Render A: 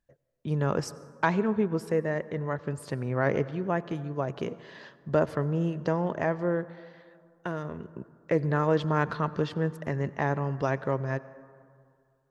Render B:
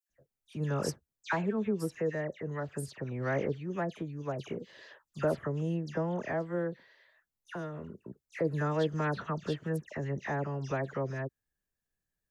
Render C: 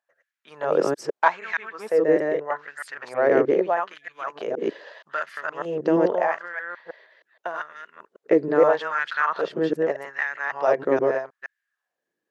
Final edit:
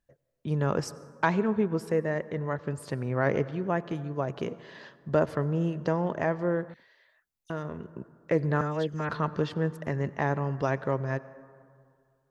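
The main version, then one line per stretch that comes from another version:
A
6.74–7.5 from B
8.61–9.09 from B
not used: C

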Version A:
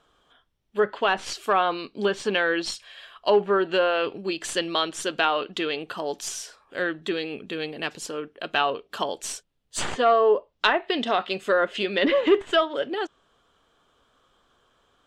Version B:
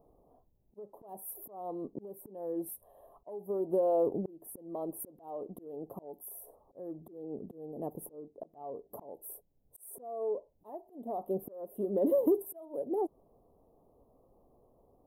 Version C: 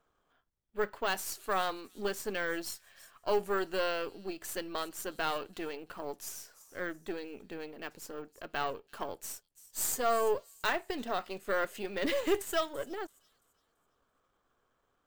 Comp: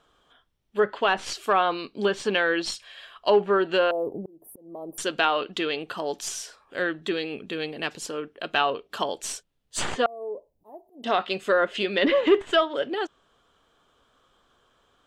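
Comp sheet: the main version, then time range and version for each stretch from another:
A
3.91–4.98 from B
10.06–11.04 from B
not used: C

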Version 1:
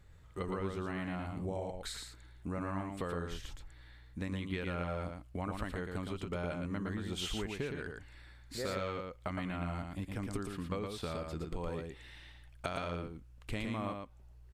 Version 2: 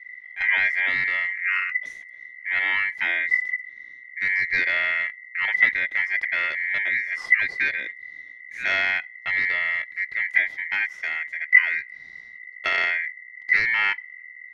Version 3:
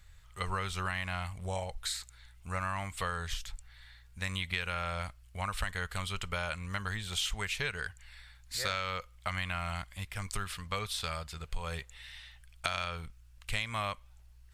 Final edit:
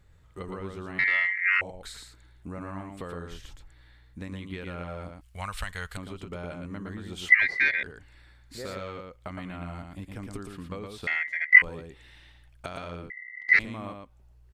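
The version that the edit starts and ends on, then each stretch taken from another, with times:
1
0.99–1.61 from 2
5.21–5.97 from 3
7.29–7.83 from 2
11.07–11.62 from 2
13.1–13.59 from 2

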